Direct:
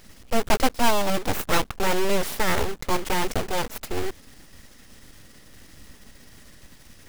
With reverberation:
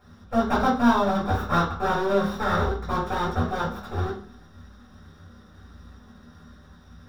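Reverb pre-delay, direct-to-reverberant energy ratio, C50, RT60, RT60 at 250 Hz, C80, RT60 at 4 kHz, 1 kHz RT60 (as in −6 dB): 3 ms, −8.5 dB, 6.5 dB, 0.50 s, 0.55 s, 11.5 dB, 0.40 s, 0.50 s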